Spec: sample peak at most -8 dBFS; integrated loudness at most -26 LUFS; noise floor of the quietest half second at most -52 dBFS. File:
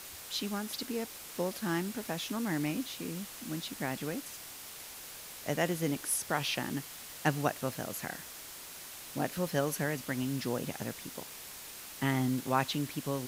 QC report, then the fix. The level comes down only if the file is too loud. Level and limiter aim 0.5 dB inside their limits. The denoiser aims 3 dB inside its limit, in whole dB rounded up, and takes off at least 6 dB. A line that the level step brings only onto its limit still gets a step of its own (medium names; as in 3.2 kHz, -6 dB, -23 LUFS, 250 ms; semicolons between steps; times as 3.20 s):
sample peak -13.5 dBFS: pass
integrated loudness -35.5 LUFS: pass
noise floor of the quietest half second -47 dBFS: fail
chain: noise reduction 8 dB, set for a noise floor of -47 dBFS